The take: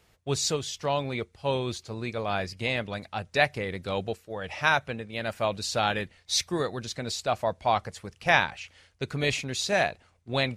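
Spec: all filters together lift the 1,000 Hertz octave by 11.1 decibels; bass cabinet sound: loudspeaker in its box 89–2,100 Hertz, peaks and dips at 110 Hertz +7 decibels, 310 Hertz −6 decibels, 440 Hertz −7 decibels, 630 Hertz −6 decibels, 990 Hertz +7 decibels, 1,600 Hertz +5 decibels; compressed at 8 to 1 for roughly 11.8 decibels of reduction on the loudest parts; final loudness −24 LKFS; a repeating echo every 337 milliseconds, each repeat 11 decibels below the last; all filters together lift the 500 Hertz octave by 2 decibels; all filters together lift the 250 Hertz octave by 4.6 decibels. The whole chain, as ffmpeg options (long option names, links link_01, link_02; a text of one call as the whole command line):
ffmpeg -i in.wav -af "equalizer=frequency=250:width_type=o:gain=7,equalizer=frequency=500:width_type=o:gain=4.5,equalizer=frequency=1000:width_type=o:gain=9,acompressor=threshold=-23dB:ratio=8,highpass=frequency=89:width=0.5412,highpass=frequency=89:width=1.3066,equalizer=frequency=110:width_type=q:width=4:gain=7,equalizer=frequency=310:width_type=q:width=4:gain=-6,equalizer=frequency=440:width_type=q:width=4:gain=-7,equalizer=frequency=630:width_type=q:width=4:gain=-6,equalizer=frequency=990:width_type=q:width=4:gain=7,equalizer=frequency=1600:width_type=q:width=4:gain=5,lowpass=frequency=2100:width=0.5412,lowpass=frequency=2100:width=1.3066,aecho=1:1:337|674|1011:0.282|0.0789|0.0221,volume=6dB" out.wav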